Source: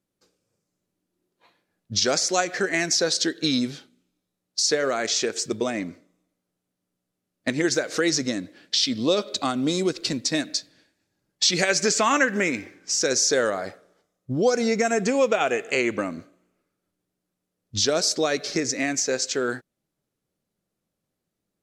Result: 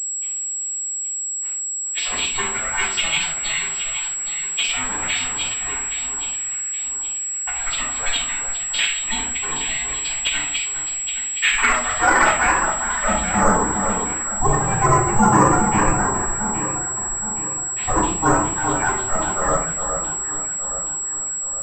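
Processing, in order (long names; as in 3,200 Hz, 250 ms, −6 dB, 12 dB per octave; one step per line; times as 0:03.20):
pitch shifter gated in a rhythm −8.5 semitones, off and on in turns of 66 ms
Butterworth high-pass 330 Hz 48 dB per octave
high-shelf EQ 2,500 Hz −7 dB
reversed playback
upward compression, threshold −37 dBFS
reversed playback
band-pass filter sweep 2,900 Hz → 930 Hz, 0:10.81–0:13.15
ring modulation 330 Hz
delay that swaps between a low-pass and a high-pass 410 ms, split 1,500 Hz, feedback 66%, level −5.5 dB
rectangular room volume 450 cubic metres, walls furnished, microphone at 8.8 metres
switching amplifier with a slow clock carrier 7,700 Hz
level +5.5 dB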